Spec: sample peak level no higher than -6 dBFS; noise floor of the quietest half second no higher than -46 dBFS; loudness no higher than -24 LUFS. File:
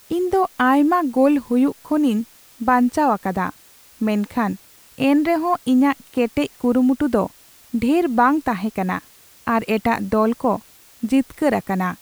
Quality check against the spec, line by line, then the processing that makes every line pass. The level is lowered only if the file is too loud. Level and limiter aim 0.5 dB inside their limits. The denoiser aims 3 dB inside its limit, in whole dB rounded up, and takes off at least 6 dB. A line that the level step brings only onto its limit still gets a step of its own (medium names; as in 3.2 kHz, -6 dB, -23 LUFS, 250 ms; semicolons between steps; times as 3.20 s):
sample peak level -5.0 dBFS: fail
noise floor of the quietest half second -49 dBFS: pass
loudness -20.0 LUFS: fail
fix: trim -4.5 dB